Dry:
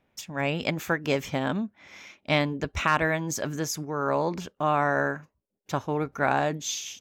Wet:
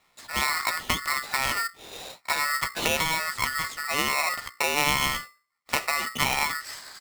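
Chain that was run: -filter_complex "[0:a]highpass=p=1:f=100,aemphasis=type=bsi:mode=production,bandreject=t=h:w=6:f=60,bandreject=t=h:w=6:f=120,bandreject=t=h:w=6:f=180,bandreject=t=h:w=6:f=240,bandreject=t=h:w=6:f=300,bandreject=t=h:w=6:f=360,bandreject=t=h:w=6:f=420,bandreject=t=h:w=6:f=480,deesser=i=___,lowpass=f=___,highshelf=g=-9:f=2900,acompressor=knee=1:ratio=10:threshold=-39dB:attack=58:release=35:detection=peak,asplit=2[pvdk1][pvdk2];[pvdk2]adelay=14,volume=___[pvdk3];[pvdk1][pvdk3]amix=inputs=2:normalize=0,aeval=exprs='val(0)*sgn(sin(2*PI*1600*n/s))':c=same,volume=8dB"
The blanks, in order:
0.95, 5100, -7.5dB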